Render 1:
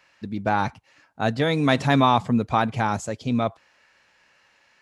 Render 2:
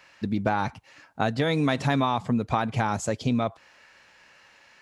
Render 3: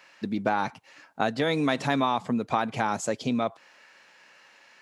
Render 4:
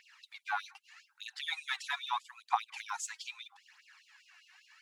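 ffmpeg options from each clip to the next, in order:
ffmpeg -i in.wav -af "acompressor=threshold=-26dB:ratio=6,volume=5dB" out.wav
ffmpeg -i in.wav -af "highpass=200" out.wav
ffmpeg -i in.wav -af "aphaser=in_gain=1:out_gain=1:delay=3.2:decay=0.59:speed=0.79:type=triangular,afftfilt=real='re*gte(b*sr/1024,700*pow(2700/700,0.5+0.5*sin(2*PI*5*pts/sr)))':imag='im*gte(b*sr/1024,700*pow(2700/700,0.5+0.5*sin(2*PI*5*pts/sr)))':win_size=1024:overlap=0.75,volume=-6dB" out.wav

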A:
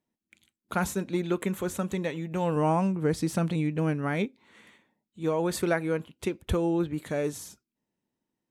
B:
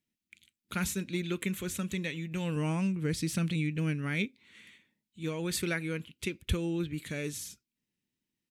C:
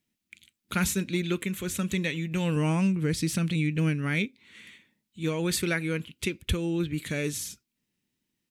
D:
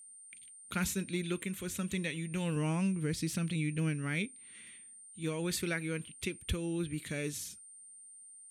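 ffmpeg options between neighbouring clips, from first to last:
ffmpeg -i in.wav -af "firequalizer=gain_entry='entry(110,0);entry(750,-16);entry(1400,-5);entry(2300,5);entry(6500,2)':delay=0.05:min_phase=1,volume=-1dB" out.wav
ffmpeg -i in.wav -af "alimiter=limit=-22dB:level=0:latency=1:release=490,volume=6dB" out.wav
ffmpeg -i in.wav -af "aeval=exprs='val(0)+0.00631*sin(2*PI*8900*n/s)':channel_layout=same,volume=-7dB" out.wav

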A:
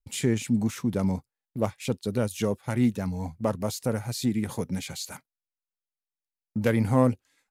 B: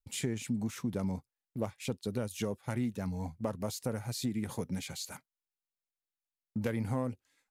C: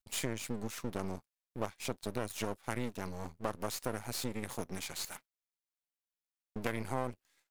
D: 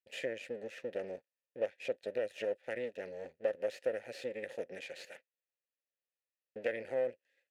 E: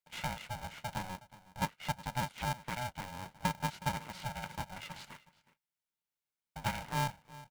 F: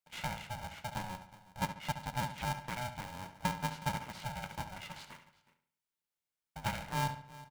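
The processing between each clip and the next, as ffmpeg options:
ffmpeg -i in.wav -af "acompressor=threshold=-24dB:ratio=6,volume=-5dB" out.wav
ffmpeg -i in.wav -af "aeval=exprs='max(val(0),0)':channel_layout=same,lowshelf=frequency=410:gain=-9,volume=5dB" out.wav
ffmpeg -i in.wav -filter_complex "[0:a]asplit=3[link_01][link_02][link_03];[link_01]bandpass=frequency=530:width_type=q:width=8,volume=0dB[link_04];[link_02]bandpass=frequency=1840:width_type=q:width=8,volume=-6dB[link_05];[link_03]bandpass=frequency=2480:width_type=q:width=8,volume=-9dB[link_06];[link_04][link_05][link_06]amix=inputs=3:normalize=0,volume=10.5dB" out.wav
ffmpeg -i in.wav -filter_complex "[0:a]asplit=2[link_01][link_02];[link_02]adelay=367.3,volume=-18dB,highshelf=frequency=4000:gain=-8.27[link_03];[link_01][link_03]amix=inputs=2:normalize=0,aeval=exprs='val(0)*sgn(sin(2*PI*370*n/s))':channel_layout=same" out.wav
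ffmpeg -i in.wav -filter_complex "[0:a]asplit=2[link_01][link_02];[link_02]adelay=70,lowpass=frequency=5000:poles=1,volume=-10dB,asplit=2[link_03][link_04];[link_04]adelay=70,lowpass=frequency=5000:poles=1,volume=0.42,asplit=2[link_05][link_06];[link_06]adelay=70,lowpass=frequency=5000:poles=1,volume=0.42,asplit=2[link_07][link_08];[link_08]adelay=70,lowpass=frequency=5000:poles=1,volume=0.42[link_09];[link_01][link_03][link_05][link_07][link_09]amix=inputs=5:normalize=0,volume=-1dB" out.wav

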